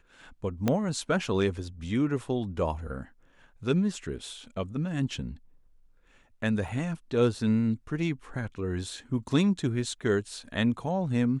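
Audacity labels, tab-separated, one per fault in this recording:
0.680000	0.680000	pop -12 dBFS
6.680000	6.680000	dropout 2.9 ms

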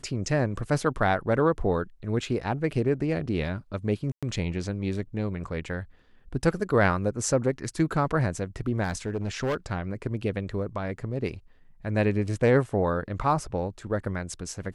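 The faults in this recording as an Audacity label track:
4.120000	4.230000	dropout 106 ms
8.830000	9.560000	clipped -23.5 dBFS

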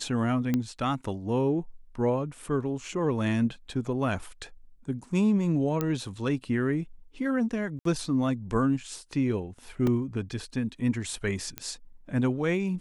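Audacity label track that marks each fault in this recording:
0.540000	0.540000	pop -14 dBFS
5.810000	5.810000	pop -14 dBFS
7.790000	7.850000	dropout 63 ms
9.870000	9.870000	dropout 2.2 ms
11.580000	11.580000	pop -15 dBFS

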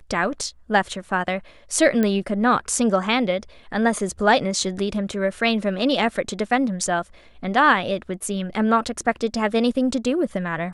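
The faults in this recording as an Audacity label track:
2.030000	2.030000	pop -10 dBFS

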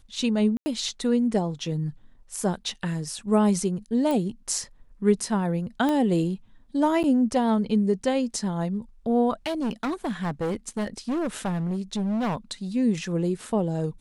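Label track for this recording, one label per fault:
0.570000	0.660000	dropout 90 ms
4.110000	4.110000	pop
5.890000	5.890000	pop -14 dBFS
7.030000	7.040000	dropout 9.3 ms
9.460000	12.370000	clipped -23.5 dBFS

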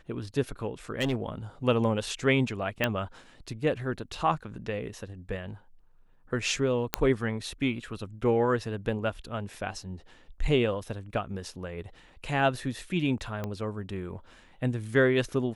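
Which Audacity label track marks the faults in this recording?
0.990000	1.220000	clipped -23 dBFS
2.840000	2.840000	pop -11 dBFS
6.940000	6.940000	pop -6 dBFS
13.440000	13.440000	pop -20 dBFS

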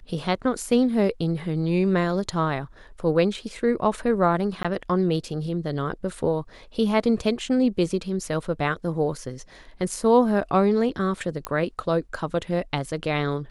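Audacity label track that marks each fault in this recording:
4.630000	4.650000	dropout 16 ms
11.450000	11.450000	pop -11 dBFS

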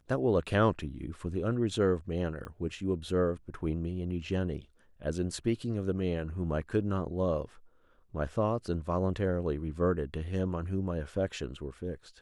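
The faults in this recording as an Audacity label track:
2.450000	2.450000	pop -28 dBFS

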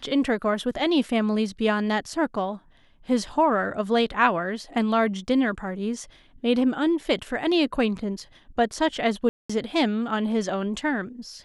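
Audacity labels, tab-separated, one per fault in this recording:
9.290000	9.490000	dropout 205 ms

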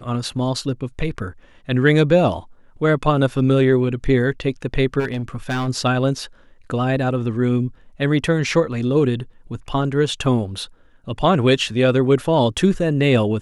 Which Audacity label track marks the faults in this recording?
4.990000	5.690000	clipped -19 dBFS

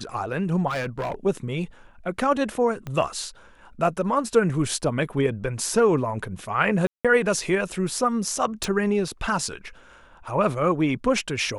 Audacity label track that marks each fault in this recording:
0.670000	1.140000	clipped -24 dBFS
2.870000	2.870000	pop -20 dBFS
6.870000	7.050000	dropout 176 ms
8.640000	8.640000	pop

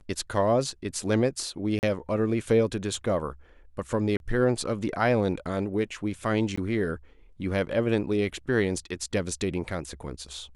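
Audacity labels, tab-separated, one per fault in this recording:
1.790000	1.830000	dropout 39 ms
4.170000	4.200000	dropout 31 ms
6.560000	6.580000	dropout 15 ms

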